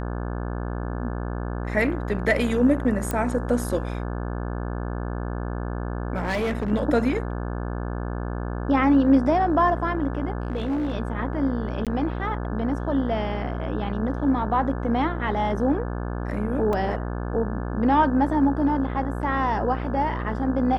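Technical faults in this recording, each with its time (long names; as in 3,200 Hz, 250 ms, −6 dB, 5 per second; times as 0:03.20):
mains buzz 60 Hz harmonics 29 −29 dBFS
0:03.11: click −12 dBFS
0:06.15–0:06.72: clipping −21.5 dBFS
0:10.42–0:10.95: clipping −22 dBFS
0:11.85–0:11.87: drop-out 17 ms
0:16.73: drop-out 2.9 ms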